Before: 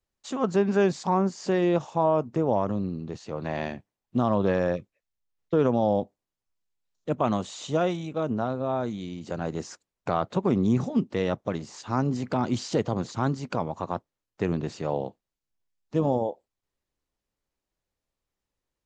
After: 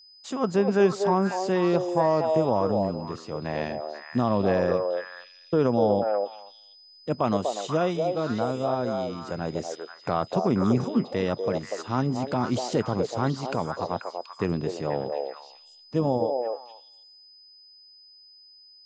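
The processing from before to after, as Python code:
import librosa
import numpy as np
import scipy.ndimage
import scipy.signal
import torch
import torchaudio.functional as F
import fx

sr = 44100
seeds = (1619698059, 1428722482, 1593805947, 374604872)

y = fx.echo_stepped(x, sr, ms=243, hz=570.0, octaves=1.4, feedback_pct=70, wet_db=-0.5)
y = y + 10.0 ** (-50.0 / 20.0) * np.sin(2.0 * np.pi * 5000.0 * np.arange(len(y)) / sr)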